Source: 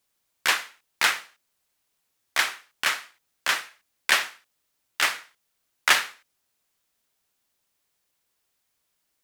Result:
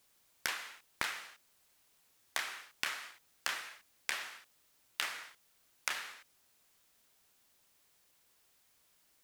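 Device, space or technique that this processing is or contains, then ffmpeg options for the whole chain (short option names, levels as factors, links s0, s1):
serial compression, peaks first: -af "acompressor=threshold=0.0282:ratio=6,acompressor=threshold=0.01:ratio=3,volume=1.78"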